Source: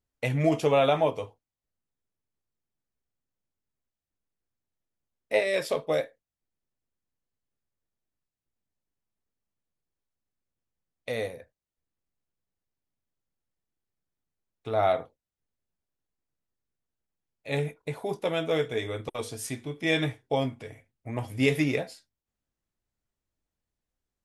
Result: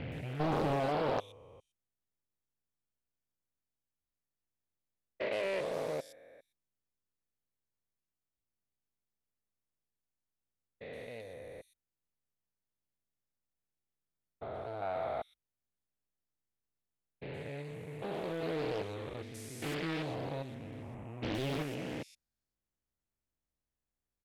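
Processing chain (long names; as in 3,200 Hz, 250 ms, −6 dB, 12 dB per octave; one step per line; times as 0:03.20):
spectrum averaged block by block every 400 ms
multiband delay without the direct sound lows, highs 120 ms, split 4,000 Hz
highs frequency-modulated by the lows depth 0.84 ms
level −4 dB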